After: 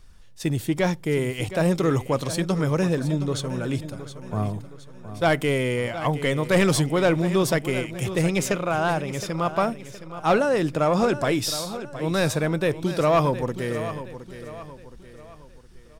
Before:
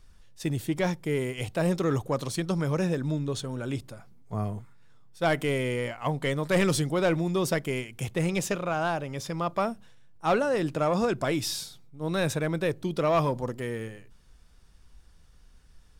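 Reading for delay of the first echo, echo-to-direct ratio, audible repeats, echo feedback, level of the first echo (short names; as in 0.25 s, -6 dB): 0.717 s, -11.5 dB, 3, 41%, -12.5 dB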